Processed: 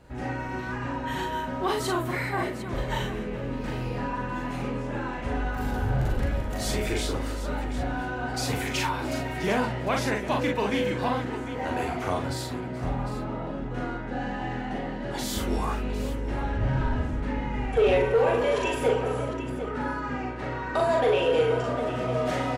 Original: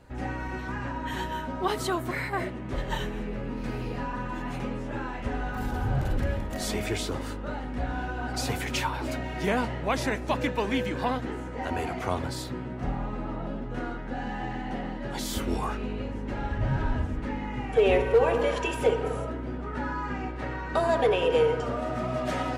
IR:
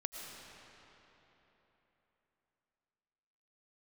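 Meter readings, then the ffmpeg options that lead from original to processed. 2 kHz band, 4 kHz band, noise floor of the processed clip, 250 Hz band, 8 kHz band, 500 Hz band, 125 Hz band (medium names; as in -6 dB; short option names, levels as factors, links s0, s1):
+1.5 dB, +1.5 dB, -33 dBFS, +1.5 dB, +2.0 dB, +1.5 dB, +2.0 dB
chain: -af "aecho=1:1:40|54|426|752:0.668|0.335|0.106|0.251,asoftclip=type=tanh:threshold=0.211"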